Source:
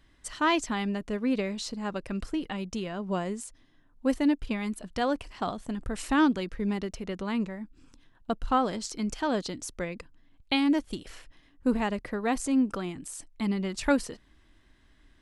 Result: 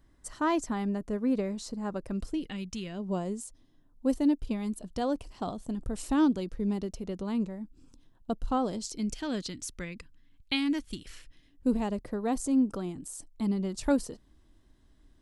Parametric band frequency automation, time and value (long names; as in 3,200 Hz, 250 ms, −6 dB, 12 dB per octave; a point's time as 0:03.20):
parametric band −12.5 dB 1.8 octaves
0:02.05 2,800 Hz
0:02.76 520 Hz
0:03.06 1,900 Hz
0:08.68 1,900 Hz
0:09.53 660 Hz
0:11.11 660 Hz
0:11.94 2,100 Hz